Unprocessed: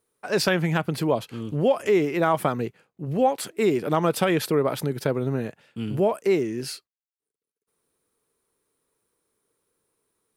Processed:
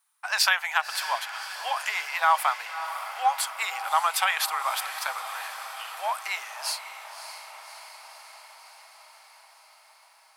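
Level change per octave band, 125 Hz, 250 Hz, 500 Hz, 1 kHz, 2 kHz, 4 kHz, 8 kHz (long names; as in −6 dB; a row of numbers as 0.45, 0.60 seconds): below −40 dB, below −40 dB, −18.0 dB, +3.5 dB, +5.0 dB, +5.0 dB, +5.0 dB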